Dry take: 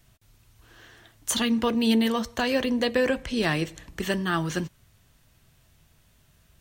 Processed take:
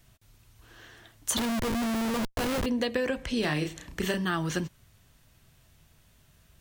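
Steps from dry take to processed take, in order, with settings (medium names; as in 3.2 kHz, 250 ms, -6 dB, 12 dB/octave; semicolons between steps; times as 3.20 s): 3.40–4.25 s: doubling 33 ms -5 dB; compression 8:1, threshold -24 dBFS, peak gain reduction 7 dB; 1.37–2.66 s: Schmitt trigger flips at -30 dBFS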